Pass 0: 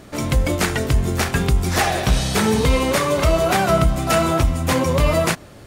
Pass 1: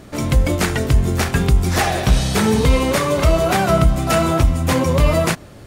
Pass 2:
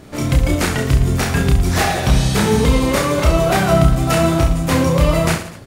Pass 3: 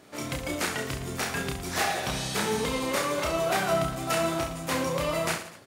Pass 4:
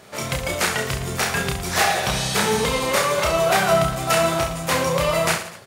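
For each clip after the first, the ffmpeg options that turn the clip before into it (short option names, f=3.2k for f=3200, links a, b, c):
-af "lowshelf=f=320:g=3.5"
-af "aecho=1:1:30|67.5|114.4|173|246.2:0.631|0.398|0.251|0.158|0.1,volume=-1dB"
-af "highpass=f=500:p=1,volume=-8dB"
-af "equalizer=f=290:t=o:w=0.31:g=-15,volume=8.5dB"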